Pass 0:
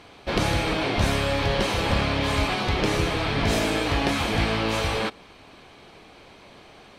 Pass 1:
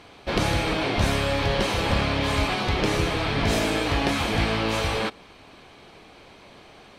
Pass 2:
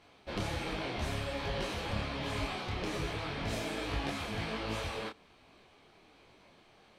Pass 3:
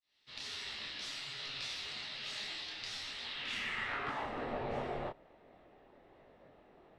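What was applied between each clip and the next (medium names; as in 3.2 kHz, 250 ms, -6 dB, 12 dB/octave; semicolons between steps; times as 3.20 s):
no audible change
detune thickener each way 44 cents; trim -9 dB
fade-in on the opening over 0.55 s; band-pass sweep 4.9 kHz -> 1 kHz, 3.22–4.44 s; frequency shift -420 Hz; trim +7.5 dB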